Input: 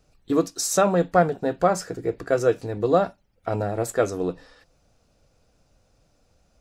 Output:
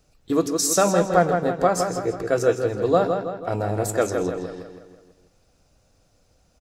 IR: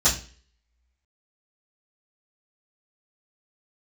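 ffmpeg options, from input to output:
-filter_complex "[0:a]highshelf=f=4.7k:g=5,asplit=2[a][b];[b]adelay=163,lowpass=f=4.9k:p=1,volume=-6dB,asplit=2[c][d];[d]adelay=163,lowpass=f=4.9k:p=1,volume=0.5,asplit=2[e][f];[f]adelay=163,lowpass=f=4.9k:p=1,volume=0.5,asplit=2[g][h];[h]adelay=163,lowpass=f=4.9k:p=1,volume=0.5,asplit=2[i][j];[j]adelay=163,lowpass=f=4.9k:p=1,volume=0.5,asplit=2[k][l];[l]adelay=163,lowpass=f=4.9k:p=1,volume=0.5[m];[a][c][e][g][i][k][m]amix=inputs=7:normalize=0,asplit=2[n][o];[1:a]atrim=start_sample=2205,adelay=115[p];[o][p]afir=irnorm=-1:irlink=0,volume=-32.5dB[q];[n][q]amix=inputs=2:normalize=0"

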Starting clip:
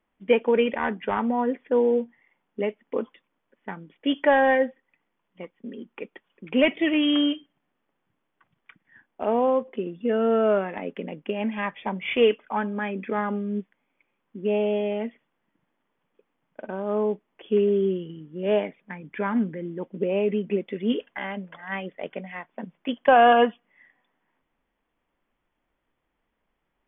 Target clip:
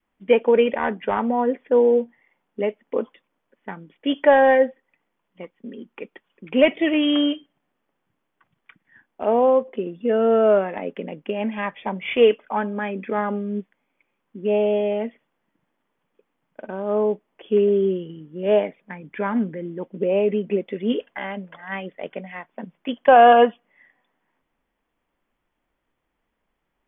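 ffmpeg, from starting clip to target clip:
-af "adynamicequalizer=threshold=0.0282:dfrequency=580:dqfactor=1.3:tfrequency=580:tqfactor=1.3:attack=5:release=100:ratio=0.375:range=2.5:mode=boostabove:tftype=bell,volume=1dB"

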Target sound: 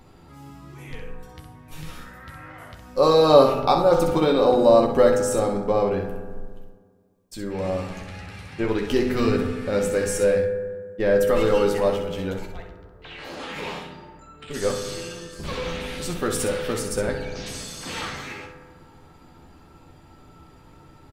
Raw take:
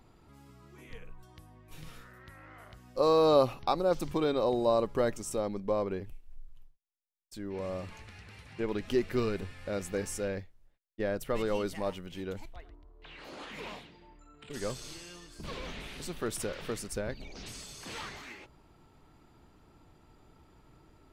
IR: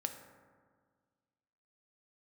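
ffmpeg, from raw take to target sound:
-filter_complex "[0:a]aecho=1:1:12|64:0.531|0.447[a];[1:a]atrim=start_sample=2205[b];[a][b]afir=irnorm=-1:irlink=0,volume=9dB"

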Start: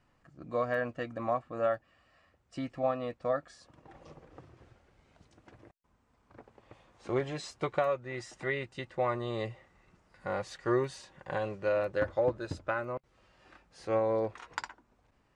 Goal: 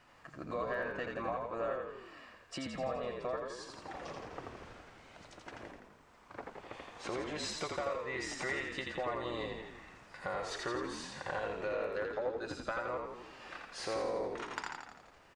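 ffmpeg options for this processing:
-filter_complex "[0:a]acompressor=threshold=-44dB:ratio=6,asplit=2[a][b];[b]highpass=f=720:p=1,volume=13dB,asoftclip=type=tanh:threshold=-24.5dB[c];[a][c]amix=inputs=2:normalize=0,lowpass=f=7.4k:p=1,volume=-6dB,asplit=9[d][e][f][g][h][i][j][k][l];[e]adelay=84,afreqshift=-46,volume=-3.5dB[m];[f]adelay=168,afreqshift=-92,volume=-8.2dB[n];[g]adelay=252,afreqshift=-138,volume=-13dB[o];[h]adelay=336,afreqshift=-184,volume=-17.7dB[p];[i]adelay=420,afreqshift=-230,volume=-22.4dB[q];[j]adelay=504,afreqshift=-276,volume=-27.2dB[r];[k]adelay=588,afreqshift=-322,volume=-31.9dB[s];[l]adelay=672,afreqshift=-368,volume=-36.6dB[t];[d][m][n][o][p][q][r][s][t]amix=inputs=9:normalize=0,volume=3dB"

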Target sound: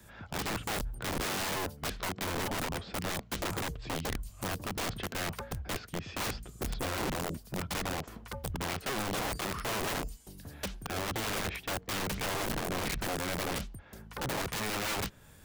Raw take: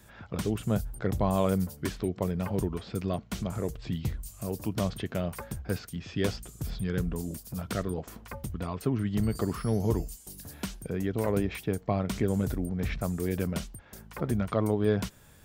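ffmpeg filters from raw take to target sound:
-filter_complex "[0:a]acrossover=split=120|1400|4300[a][b][c][d];[d]acompressor=threshold=-55dB:ratio=10[e];[a][b][c][e]amix=inputs=4:normalize=0,aeval=exprs='(mod(26.6*val(0)+1,2)-1)/26.6':c=same"

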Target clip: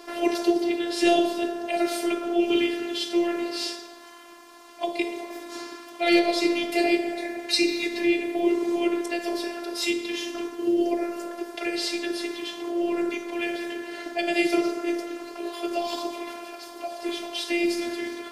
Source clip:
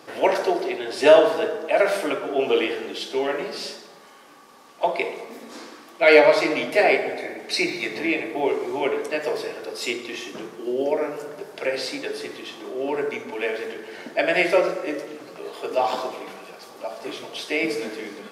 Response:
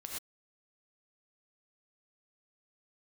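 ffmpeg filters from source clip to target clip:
-filter_complex "[0:a]afftfilt=real='hypot(re,im)*cos(PI*b)':imag='0':win_size=512:overlap=0.75,acrossover=split=410|3000[a][b][c];[b]acompressor=threshold=-39dB:ratio=5[d];[a][d][c]amix=inputs=3:normalize=0,volume=6dB"

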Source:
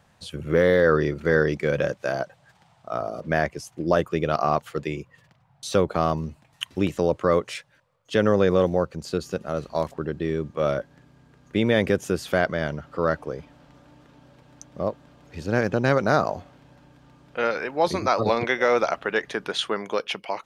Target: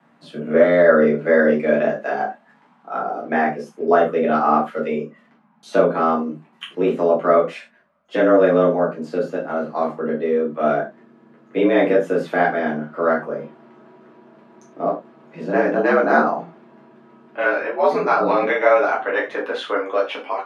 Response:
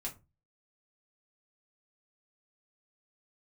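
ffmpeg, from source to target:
-filter_complex "[0:a]afreqshift=79,acrossover=split=170 2600:gain=0.178 1 0.141[a][b][c];[a][b][c]amix=inputs=3:normalize=0[d];[1:a]atrim=start_sample=2205,atrim=end_sample=3087,asetrate=26019,aresample=44100[e];[d][e]afir=irnorm=-1:irlink=0,volume=2.5dB"

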